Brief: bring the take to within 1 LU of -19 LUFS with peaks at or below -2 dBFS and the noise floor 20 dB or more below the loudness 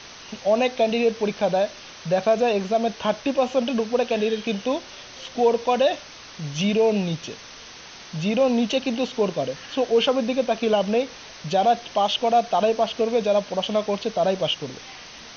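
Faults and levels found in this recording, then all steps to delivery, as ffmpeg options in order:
noise floor -42 dBFS; noise floor target -43 dBFS; loudness -23.0 LUFS; peak level -9.0 dBFS; loudness target -19.0 LUFS
-> -af "afftdn=nr=6:nf=-42"
-af "volume=1.58"

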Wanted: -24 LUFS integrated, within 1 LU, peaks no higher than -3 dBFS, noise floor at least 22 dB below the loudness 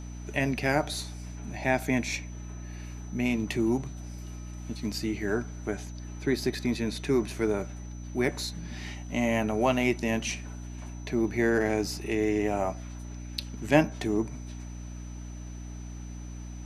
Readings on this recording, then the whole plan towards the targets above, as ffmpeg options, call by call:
hum 60 Hz; highest harmonic 300 Hz; hum level -37 dBFS; steady tone 6 kHz; tone level -53 dBFS; loudness -29.5 LUFS; peak level -6.5 dBFS; loudness target -24.0 LUFS
-> -af "bandreject=f=60:t=h:w=6,bandreject=f=120:t=h:w=6,bandreject=f=180:t=h:w=6,bandreject=f=240:t=h:w=6,bandreject=f=300:t=h:w=6"
-af "bandreject=f=6000:w=30"
-af "volume=1.88,alimiter=limit=0.708:level=0:latency=1"

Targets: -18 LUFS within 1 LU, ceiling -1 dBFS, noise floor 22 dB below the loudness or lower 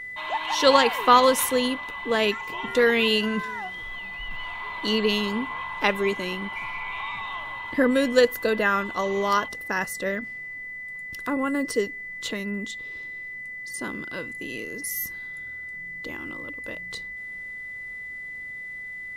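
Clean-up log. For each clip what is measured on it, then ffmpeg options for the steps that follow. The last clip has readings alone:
steady tone 2 kHz; tone level -34 dBFS; loudness -26.0 LUFS; peak level -2.5 dBFS; loudness target -18.0 LUFS
-> -af "bandreject=f=2000:w=30"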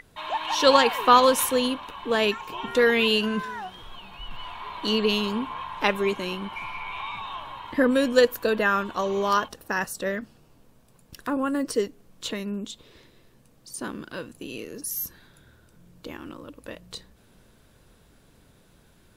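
steady tone not found; loudness -24.5 LUFS; peak level -3.0 dBFS; loudness target -18.0 LUFS
-> -af "volume=2.11,alimiter=limit=0.891:level=0:latency=1"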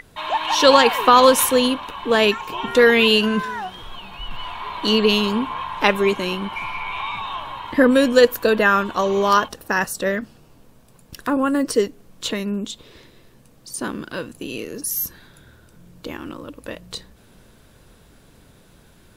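loudness -18.5 LUFS; peak level -1.0 dBFS; noise floor -52 dBFS

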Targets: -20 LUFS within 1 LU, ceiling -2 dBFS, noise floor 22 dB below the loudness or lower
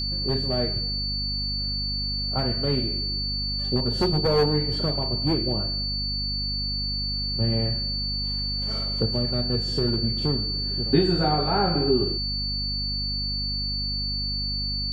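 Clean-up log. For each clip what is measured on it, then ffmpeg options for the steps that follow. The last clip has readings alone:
hum 50 Hz; highest harmonic 250 Hz; hum level -29 dBFS; steady tone 4.5 kHz; tone level -27 dBFS; loudness -24.5 LUFS; peak level -7.0 dBFS; loudness target -20.0 LUFS
-> -af "bandreject=f=50:t=h:w=6,bandreject=f=100:t=h:w=6,bandreject=f=150:t=h:w=6,bandreject=f=200:t=h:w=6,bandreject=f=250:t=h:w=6"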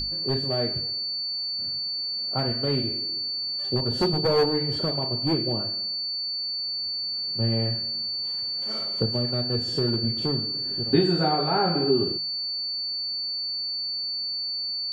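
hum not found; steady tone 4.5 kHz; tone level -27 dBFS
-> -af "bandreject=f=4500:w=30"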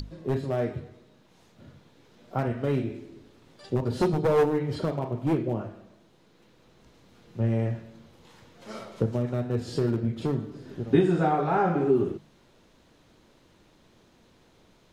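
steady tone not found; loudness -27.5 LUFS; peak level -8.5 dBFS; loudness target -20.0 LUFS
-> -af "volume=2.37,alimiter=limit=0.794:level=0:latency=1"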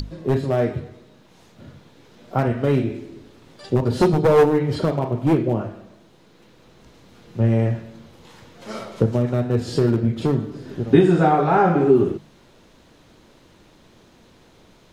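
loudness -20.0 LUFS; peak level -2.0 dBFS; noise floor -53 dBFS

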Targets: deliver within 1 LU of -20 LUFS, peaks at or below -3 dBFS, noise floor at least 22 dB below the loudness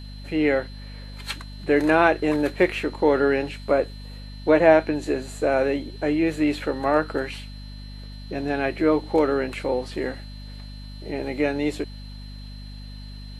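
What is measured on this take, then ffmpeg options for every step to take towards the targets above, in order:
hum 50 Hz; highest harmonic 250 Hz; hum level -36 dBFS; steady tone 4.1 kHz; tone level -47 dBFS; loudness -23.0 LUFS; peak level -3.0 dBFS; loudness target -20.0 LUFS
-> -af "bandreject=f=50:t=h:w=4,bandreject=f=100:t=h:w=4,bandreject=f=150:t=h:w=4,bandreject=f=200:t=h:w=4,bandreject=f=250:t=h:w=4"
-af "bandreject=f=4100:w=30"
-af "volume=1.41,alimiter=limit=0.708:level=0:latency=1"

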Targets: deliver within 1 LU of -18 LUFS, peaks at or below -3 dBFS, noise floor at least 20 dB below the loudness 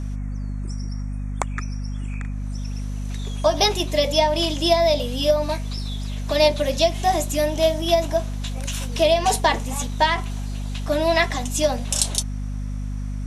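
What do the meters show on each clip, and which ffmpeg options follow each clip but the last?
hum 50 Hz; highest harmonic 250 Hz; hum level -25 dBFS; loudness -22.5 LUFS; peak level -2.5 dBFS; loudness target -18.0 LUFS
-> -af "bandreject=f=50:t=h:w=6,bandreject=f=100:t=h:w=6,bandreject=f=150:t=h:w=6,bandreject=f=200:t=h:w=6,bandreject=f=250:t=h:w=6"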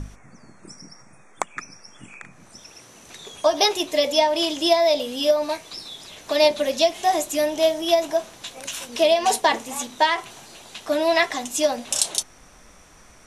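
hum not found; loudness -21.5 LUFS; peak level -2.5 dBFS; loudness target -18.0 LUFS
-> -af "volume=1.5,alimiter=limit=0.708:level=0:latency=1"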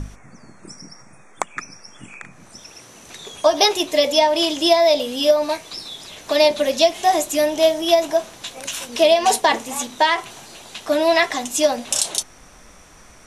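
loudness -18.5 LUFS; peak level -3.0 dBFS; noise floor -46 dBFS

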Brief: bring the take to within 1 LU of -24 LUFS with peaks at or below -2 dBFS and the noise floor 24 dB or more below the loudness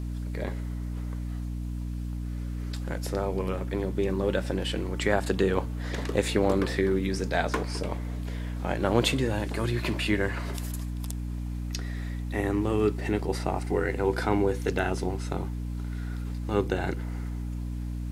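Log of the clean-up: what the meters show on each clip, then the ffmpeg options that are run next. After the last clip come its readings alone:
hum 60 Hz; highest harmonic 300 Hz; hum level -30 dBFS; loudness -29.5 LUFS; peak level -7.0 dBFS; loudness target -24.0 LUFS
-> -af "bandreject=f=60:t=h:w=4,bandreject=f=120:t=h:w=4,bandreject=f=180:t=h:w=4,bandreject=f=240:t=h:w=4,bandreject=f=300:t=h:w=4"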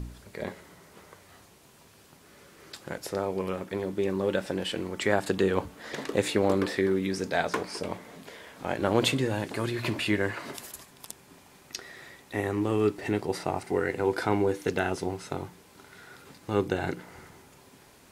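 hum not found; loudness -29.5 LUFS; peak level -8.0 dBFS; loudness target -24.0 LUFS
-> -af "volume=1.88"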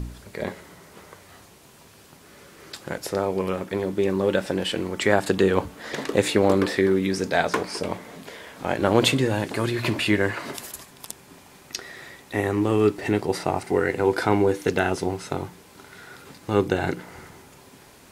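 loudness -24.0 LUFS; peak level -3.0 dBFS; noise floor -51 dBFS

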